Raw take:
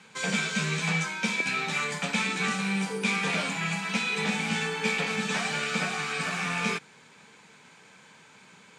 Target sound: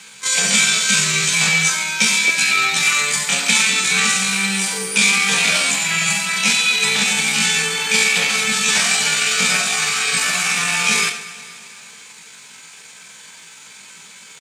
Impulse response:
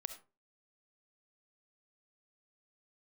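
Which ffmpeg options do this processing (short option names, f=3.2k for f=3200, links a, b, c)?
-filter_complex "[0:a]crystalizer=i=9:c=0,atempo=0.61,aecho=1:1:236|472|708|944|1180:0.133|0.076|0.0433|0.0247|0.0141[a];[1:a]atrim=start_sample=2205[b];[a][b]afir=irnorm=-1:irlink=0,volume=4.5dB"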